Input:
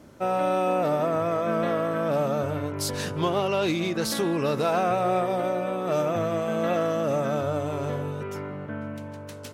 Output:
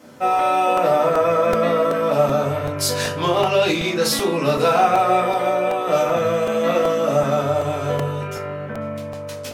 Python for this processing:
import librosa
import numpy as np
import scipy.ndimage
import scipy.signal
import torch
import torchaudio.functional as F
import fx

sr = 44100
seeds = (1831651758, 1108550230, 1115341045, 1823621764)

y = scipy.signal.sosfilt(scipy.signal.butter(2, 96.0, 'highpass', fs=sr, output='sos'), x)
y = fx.low_shelf(y, sr, hz=440.0, db=-9.0)
y = fx.room_shoebox(y, sr, seeds[0], volume_m3=150.0, walls='furnished', distance_m=2.0)
y = fx.buffer_crackle(y, sr, first_s=0.39, period_s=0.38, block=128, kind='repeat')
y = y * 10.0 ** (5.0 / 20.0)